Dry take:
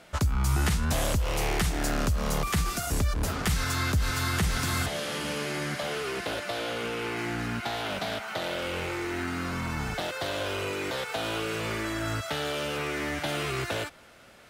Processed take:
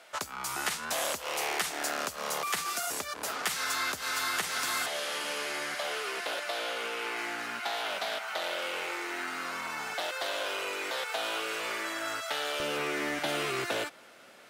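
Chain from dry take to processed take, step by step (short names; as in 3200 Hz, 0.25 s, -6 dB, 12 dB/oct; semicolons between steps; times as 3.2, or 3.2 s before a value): HPF 580 Hz 12 dB/oct, from 12.6 s 250 Hz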